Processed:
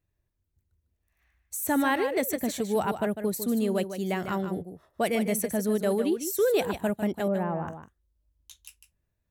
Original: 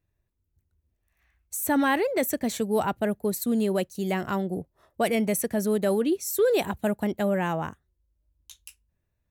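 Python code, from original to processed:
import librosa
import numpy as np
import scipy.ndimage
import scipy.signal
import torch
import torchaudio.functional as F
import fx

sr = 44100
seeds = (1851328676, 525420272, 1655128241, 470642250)

p1 = fx.lowpass(x, sr, hz=1100.0, slope=12, at=(7.28, 7.68))
p2 = p1 + fx.echo_single(p1, sr, ms=151, db=-9.5, dry=0)
y = F.gain(torch.from_numpy(p2), -2.0).numpy()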